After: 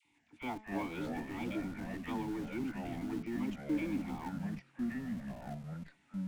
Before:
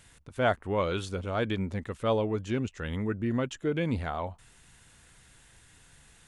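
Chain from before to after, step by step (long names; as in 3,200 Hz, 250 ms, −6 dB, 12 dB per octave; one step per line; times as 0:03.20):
formant filter u
high-shelf EQ 2,400 Hz +9.5 dB
all-pass dispersion lows, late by 54 ms, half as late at 870 Hz
in parallel at −6.5 dB: comparator with hysteresis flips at −43.5 dBFS
on the sum: hum removal 215.5 Hz, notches 34
delay with pitch and tempo change per echo 139 ms, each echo −4 semitones, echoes 2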